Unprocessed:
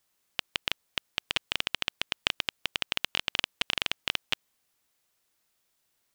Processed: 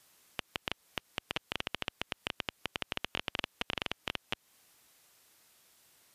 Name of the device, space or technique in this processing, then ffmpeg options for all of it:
podcast mastering chain: -af "highpass=f=61:p=1,deesser=0.85,acompressor=threshold=-46dB:ratio=2,alimiter=level_in=1dB:limit=-24dB:level=0:latency=1:release=118,volume=-1dB,volume=12dB" -ar 32000 -c:a libmp3lame -b:a 112k

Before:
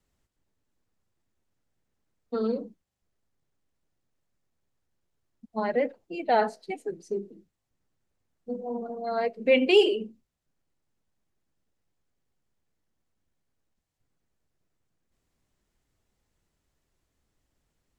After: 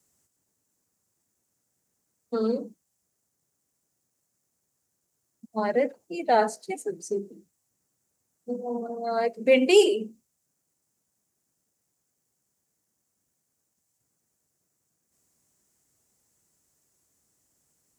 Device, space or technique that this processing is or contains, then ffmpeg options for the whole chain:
budget condenser microphone: -af "highpass=110,highshelf=f=5k:t=q:w=1.5:g=11.5,volume=2dB"

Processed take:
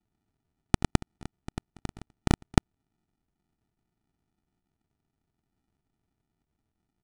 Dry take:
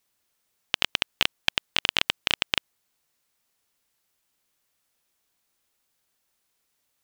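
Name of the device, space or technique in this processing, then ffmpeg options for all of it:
crushed at another speed: -af "asetrate=88200,aresample=44100,acrusher=samples=41:mix=1:aa=0.000001,asetrate=22050,aresample=44100,volume=-2dB"

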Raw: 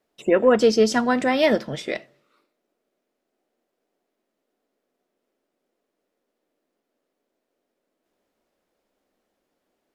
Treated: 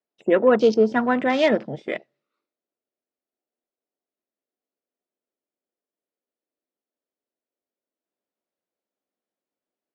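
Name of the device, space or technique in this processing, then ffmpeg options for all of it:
over-cleaned archive recording: -filter_complex "[0:a]acrossover=split=4900[a][b];[b]acompressor=threshold=-44dB:ratio=4:attack=1:release=60[c];[a][c]amix=inputs=2:normalize=0,highpass=120,lowpass=7k,afwtdn=0.02"

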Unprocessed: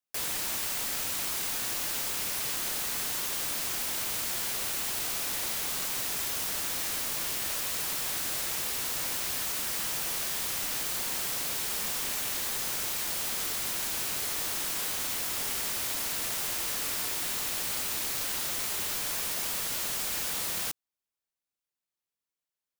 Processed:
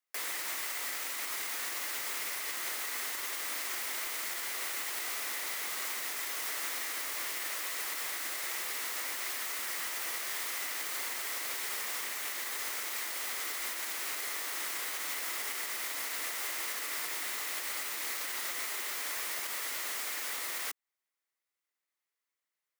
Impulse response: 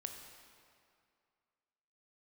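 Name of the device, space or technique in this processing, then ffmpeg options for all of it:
laptop speaker: -af "highpass=f=290:w=0.5412,highpass=f=290:w=1.3066,equalizer=f=1.2k:t=o:w=0.55:g=5,equalizer=f=2k:t=o:w=0.38:g=10,alimiter=level_in=2.5dB:limit=-24dB:level=0:latency=1:release=206,volume=-2.5dB"

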